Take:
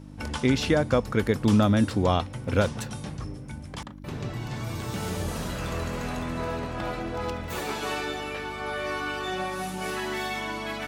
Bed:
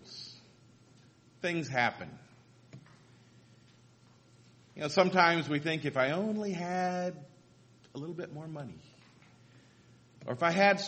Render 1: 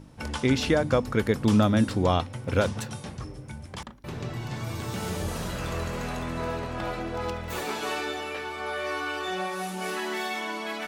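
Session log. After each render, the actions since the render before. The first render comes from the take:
hum removal 50 Hz, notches 6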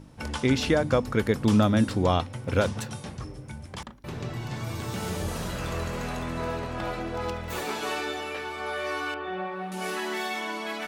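0:09.14–0:09.72: high-frequency loss of the air 470 metres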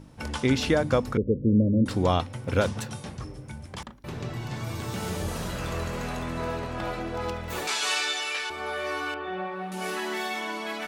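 0:01.17–0:01.86: Butterworth low-pass 560 Hz 96 dB per octave
0:07.67–0:08.50: meter weighting curve ITU-R 468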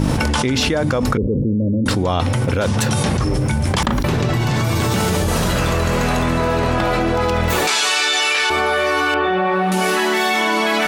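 envelope flattener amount 100%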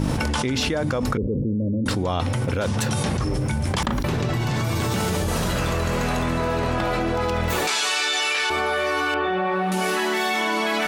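level −5.5 dB

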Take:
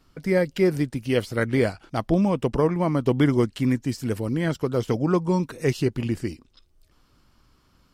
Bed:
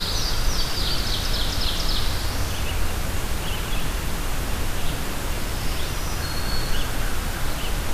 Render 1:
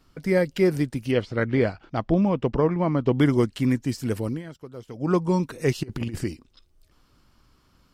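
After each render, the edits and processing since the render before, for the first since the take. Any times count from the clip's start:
0:01.11–0:03.15: high-frequency loss of the air 150 metres
0:04.27–0:05.11: duck −15.5 dB, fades 0.16 s
0:05.83–0:06.24: compressor whose output falls as the input rises −29 dBFS, ratio −0.5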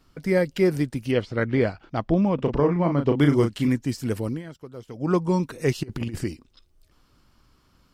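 0:02.35–0:03.68: double-tracking delay 35 ms −6 dB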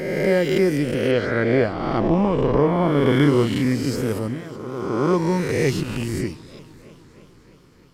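peak hold with a rise ahead of every peak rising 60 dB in 1.61 s
feedback echo with a swinging delay time 311 ms, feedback 71%, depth 121 cents, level −21 dB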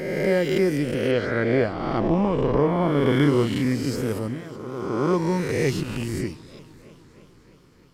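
level −2.5 dB

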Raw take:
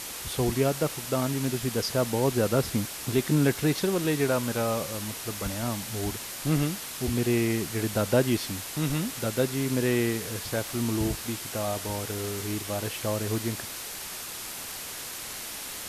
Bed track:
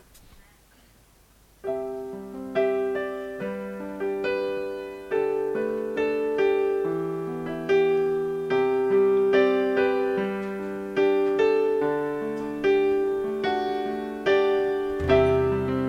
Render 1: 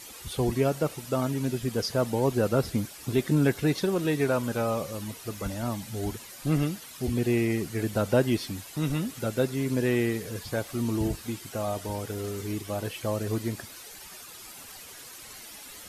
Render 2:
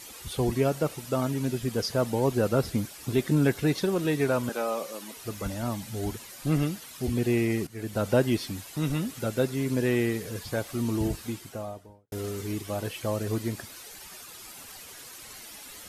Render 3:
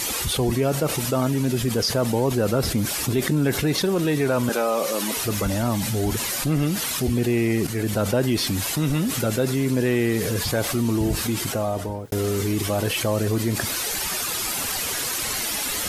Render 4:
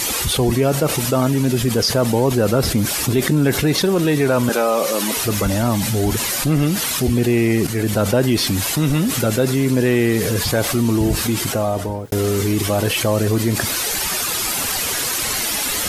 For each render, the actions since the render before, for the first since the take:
broadband denoise 11 dB, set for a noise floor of −38 dBFS
0:04.49–0:05.17: Bessel high-pass filter 330 Hz, order 6; 0:07.67–0:08.08: fade in, from −14.5 dB; 0:11.21–0:12.12: fade out and dull
envelope flattener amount 70%
level +5 dB

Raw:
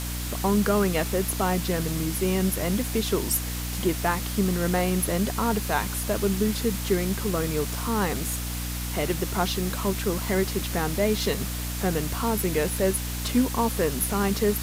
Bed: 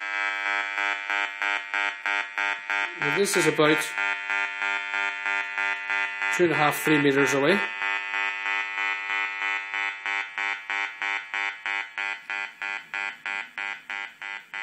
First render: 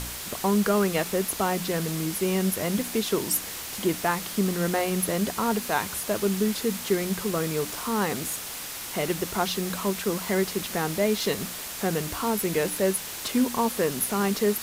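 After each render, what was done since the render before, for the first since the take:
hum removal 60 Hz, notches 5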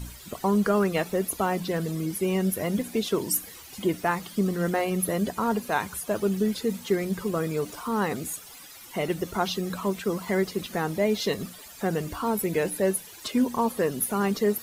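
broadband denoise 15 dB, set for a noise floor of −36 dBFS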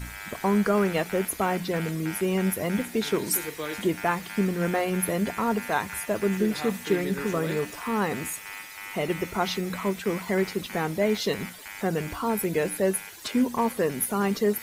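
mix in bed −13.5 dB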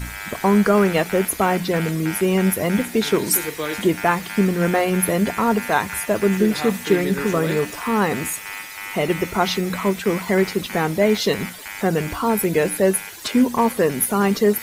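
level +7 dB

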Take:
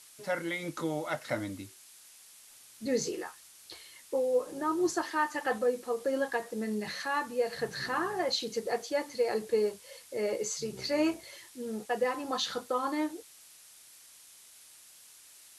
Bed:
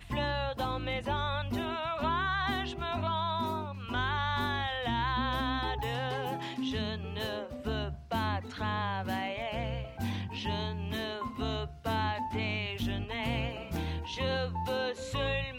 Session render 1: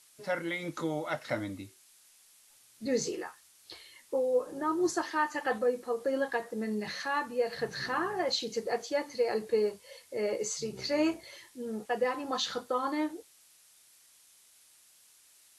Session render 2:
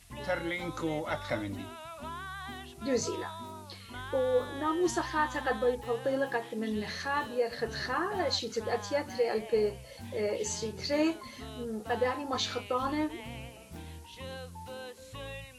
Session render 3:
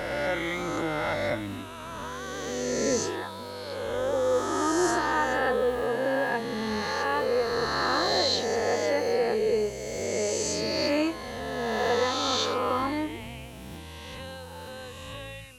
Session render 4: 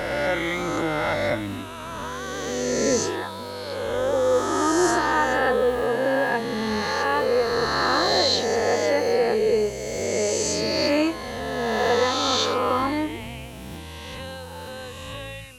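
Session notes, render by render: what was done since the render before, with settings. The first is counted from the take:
noise reduction from a noise print 6 dB
mix in bed −10.5 dB
peak hold with a rise ahead of every peak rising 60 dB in 2.56 s
level +4.5 dB

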